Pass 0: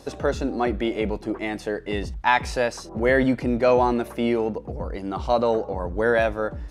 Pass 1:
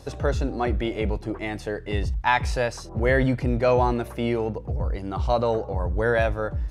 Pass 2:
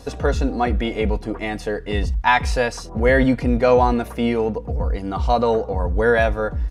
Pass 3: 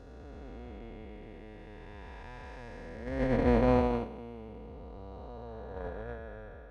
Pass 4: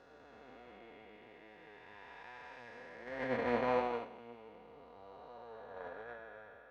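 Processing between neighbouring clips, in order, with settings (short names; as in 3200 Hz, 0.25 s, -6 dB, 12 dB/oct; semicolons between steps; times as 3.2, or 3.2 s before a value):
resonant low shelf 160 Hz +7.5 dB, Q 1.5; gain -1.5 dB
comb 4.2 ms, depth 47%; gain +4 dB
time blur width 0.807 s; gate -18 dBFS, range -25 dB; high shelf 7500 Hz -10.5 dB; gain +4.5 dB
flange 1.3 Hz, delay 5.2 ms, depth 4 ms, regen +57%; band-pass 1800 Hz, Q 0.53; gain +3.5 dB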